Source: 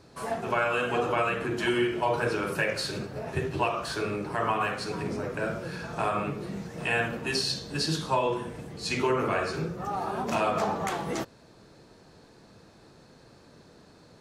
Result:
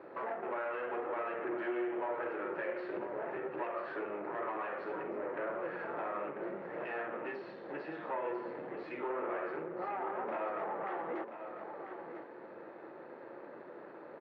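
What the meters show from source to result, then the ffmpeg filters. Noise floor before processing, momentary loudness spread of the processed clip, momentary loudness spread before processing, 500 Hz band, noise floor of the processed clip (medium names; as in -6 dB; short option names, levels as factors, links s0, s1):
-55 dBFS, 13 LU, 8 LU, -7.5 dB, -51 dBFS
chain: -af "acompressor=threshold=0.00891:ratio=6,aeval=exprs='(tanh(141*val(0)+0.75)-tanh(0.75))/141':c=same,highpass=330,equalizer=f=350:t=q:w=4:g=9,equalizer=f=550:t=q:w=4:g=9,equalizer=f=880:t=q:w=4:g=5,equalizer=f=1300:t=q:w=4:g=4,equalizer=f=1900:t=q:w=4:g=4,lowpass=f=2200:w=0.5412,lowpass=f=2200:w=1.3066,aecho=1:1:994:0.355,volume=2"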